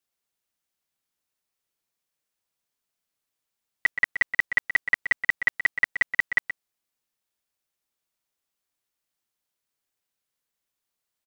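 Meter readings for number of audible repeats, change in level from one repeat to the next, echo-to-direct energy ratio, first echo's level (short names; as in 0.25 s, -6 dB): 1, no steady repeat, -10.0 dB, -10.0 dB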